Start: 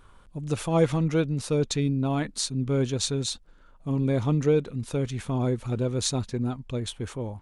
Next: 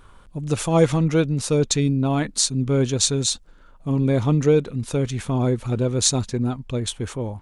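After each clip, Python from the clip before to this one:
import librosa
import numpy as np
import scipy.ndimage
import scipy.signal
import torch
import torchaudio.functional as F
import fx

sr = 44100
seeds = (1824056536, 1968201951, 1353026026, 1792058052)

y = fx.dynamic_eq(x, sr, hz=7100.0, q=1.2, threshold_db=-47.0, ratio=4.0, max_db=6)
y = y * librosa.db_to_amplitude(5.0)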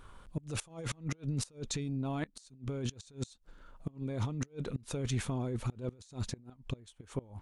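y = fx.over_compress(x, sr, threshold_db=-25.0, ratio=-1.0)
y = fx.gate_flip(y, sr, shuts_db=-15.0, range_db=-24)
y = y * librosa.db_to_amplitude(-9.0)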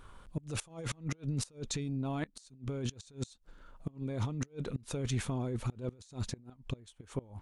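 y = x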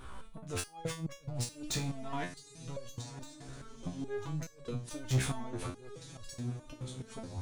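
y = fx.echo_diffused(x, sr, ms=1047, feedback_pct=42, wet_db=-15)
y = 10.0 ** (-35.5 / 20.0) * np.tanh(y / 10.0 ** (-35.5 / 20.0))
y = fx.resonator_held(y, sr, hz=4.7, low_hz=65.0, high_hz=560.0)
y = y * librosa.db_to_amplitude(15.0)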